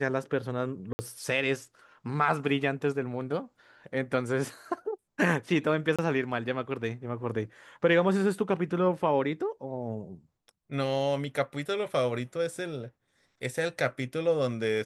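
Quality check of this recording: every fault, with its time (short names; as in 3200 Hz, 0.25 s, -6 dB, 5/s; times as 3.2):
0.93–0.99 gap 60 ms
5.96–5.99 gap 26 ms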